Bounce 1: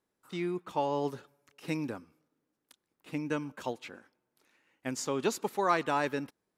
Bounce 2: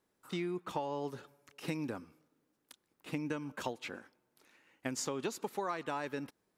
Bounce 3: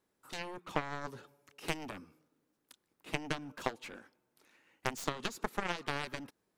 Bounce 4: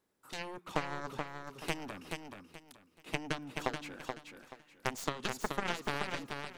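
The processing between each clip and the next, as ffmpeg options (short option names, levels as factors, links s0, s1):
-af "acompressor=threshold=0.0141:ratio=8,volume=1.5"
-af "aeval=exprs='0.112*(cos(1*acos(clip(val(0)/0.112,-1,1)))-cos(1*PI/2))+0.00562*(cos(4*acos(clip(val(0)/0.112,-1,1)))-cos(4*PI/2))+0.0251*(cos(7*acos(clip(val(0)/0.112,-1,1)))-cos(7*PI/2))':c=same,volume=1.58"
-af "aecho=1:1:429|858|1287:0.562|0.146|0.038"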